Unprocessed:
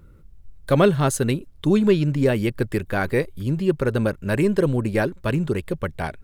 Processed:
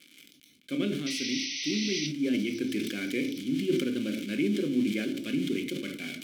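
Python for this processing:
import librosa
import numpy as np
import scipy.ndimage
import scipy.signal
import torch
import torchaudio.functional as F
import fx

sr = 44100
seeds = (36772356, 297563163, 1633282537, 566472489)

p1 = x + 0.5 * 10.0 ** (-16.5 / 20.0) * np.diff(np.sign(x), prepend=np.sign(x[:1]))
p2 = fx.vowel_filter(p1, sr, vowel='i')
p3 = fx.tilt_eq(p2, sr, slope=2.0)
p4 = fx.notch(p3, sr, hz=1900.0, q=6.3)
p5 = fx.spec_paint(p4, sr, seeds[0], shape='noise', start_s=1.06, length_s=1.01, low_hz=1900.0, high_hz=6200.0, level_db=-33.0)
p6 = p5 + fx.echo_wet_highpass(p5, sr, ms=530, feedback_pct=65, hz=4000.0, wet_db=-24.0, dry=0)
p7 = fx.rider(p6, sr, range_db=3, speed_s=0.5)
p8 = scipy.signal.sosfilt(scipy.signal.butter(2, 120.0, 'highpass', fs=sr, output='sos'), p7)
p9 = fx.peak_eq(p8, sr, hz=350.0, db=3.5, octaves=2.3)
p10 = fx.room_shoebox(p9, sr, seeds[1], volume_m3=280.0, walls='furnished', distance_m=0.92)
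y = fx.sustainer(p10, sr, db_per_s=45.0)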